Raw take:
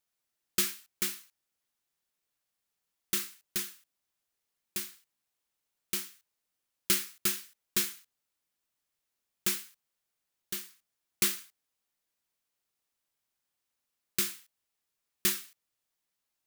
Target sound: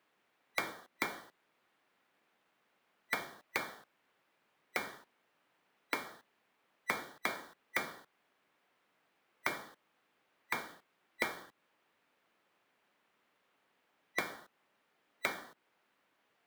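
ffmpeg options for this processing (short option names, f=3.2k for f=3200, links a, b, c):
-filter_complex "[0:a]afftfilt=real='real(if(lt(b,920),b+92*(1-2*mod(floor(b/92),2)),b),0)':imag='imag(if(lt(b,920),b+92*(1-2*mod(floor(b/92),2)),b),0)':win_size=2048:overlap=0.75,acrossover=split=160 2800:gain=0.1 1 0.0708[a][b][c];[a][b][c]amix=inputs=3:normalize=0,acompressor=threshold=-51dB:ratio=12,volume=18dB"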